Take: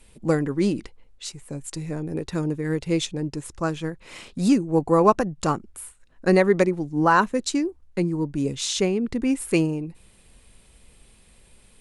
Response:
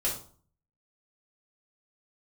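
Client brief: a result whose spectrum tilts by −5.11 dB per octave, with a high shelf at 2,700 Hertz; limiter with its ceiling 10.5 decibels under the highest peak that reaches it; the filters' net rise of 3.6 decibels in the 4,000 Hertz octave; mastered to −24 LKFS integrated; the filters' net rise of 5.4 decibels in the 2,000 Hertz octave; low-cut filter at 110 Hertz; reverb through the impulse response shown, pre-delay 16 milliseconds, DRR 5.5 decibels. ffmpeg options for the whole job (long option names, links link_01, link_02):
-filter_complex "[0:a]highpass=110,equalizer=frequency=2000:width_type=o:gain=8,highshelf=frequency=2700:gain=-5,equalizer=frequency=4000:width_type=o:gain=6,alimiter=limit=-13.5dB:level=0:latency=1,asplit=2[link_01][link_02];[1:a]atrim=start_sample=2205,adelay=16[link_03];[link_02][link_03]afir=irnorm=-1:irlink=0,volume=-12dB[link_04];[link_01][link_04]amix=inputs=2:normalize=0,volume=1dB"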